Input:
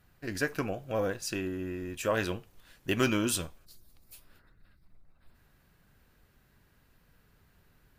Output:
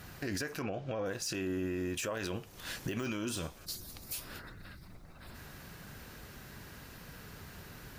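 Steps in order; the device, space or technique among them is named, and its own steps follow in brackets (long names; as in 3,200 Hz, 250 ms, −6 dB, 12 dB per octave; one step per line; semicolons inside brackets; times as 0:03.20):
broadcast voice chain (high-pass filter 77 Hz 6 dB per octave; de-essing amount 80%; downward compressor 3 to 1, threshold −50 dBFS, peak gain reduction 20 dB; parametric band 5,800 Hz +4.5 dB 0.76 octaves; brickwall limiter −44 dBFS, peak gain reduction 10.5 dB)
0:00.62–0:01.06: Chebyshev low-pass filter 3,700 Hz, order 2
level +17 dB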